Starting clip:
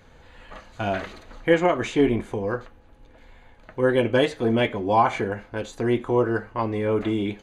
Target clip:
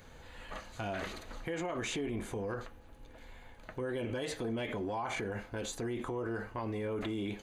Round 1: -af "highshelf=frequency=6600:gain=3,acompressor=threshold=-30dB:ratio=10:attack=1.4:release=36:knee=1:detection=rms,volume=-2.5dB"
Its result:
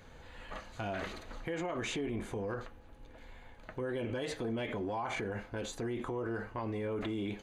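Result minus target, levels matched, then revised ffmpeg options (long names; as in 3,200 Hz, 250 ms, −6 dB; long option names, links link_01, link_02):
8,000 Hz band −3.0 dB
-af "highshelf=frequency=6600:gain=10.5,acompressor=threshold=-30dB:ratio=10:attack=1.4:release=36:knee=1:detection=rms,volume=-2.5dB"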